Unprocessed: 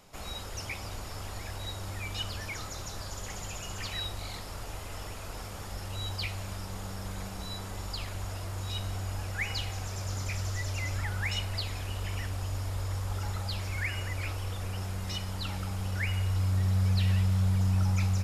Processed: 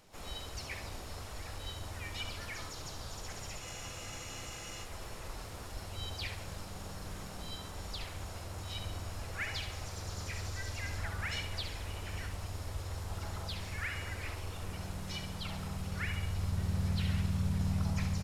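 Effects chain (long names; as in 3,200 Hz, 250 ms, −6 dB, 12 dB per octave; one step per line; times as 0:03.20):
flutter between parallel walls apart 11.8 metres, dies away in 0.54 s
pitch-shifted copies added −4 semitones −2 dB, +3 semitones −14 dB, +5 semitones −17 dB
frozen spectrum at 0:03.63, 1.22 s
level −7 dB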